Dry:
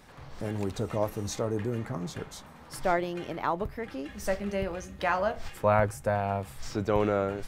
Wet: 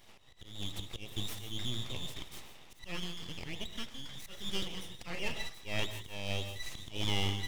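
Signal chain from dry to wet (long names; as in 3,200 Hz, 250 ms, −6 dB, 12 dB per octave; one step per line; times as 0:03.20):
frequency inversion band by band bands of 2,000 Hz
full-wave rectification
volume swells 223 ms
parametric band 1,500 Hz −6 dB 0.21 octaves
reverb whose tail is shaped and stops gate 190 ms rising, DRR 9.5 dB
amplitude modulation by smooth noise, depth 60%
level −1 dB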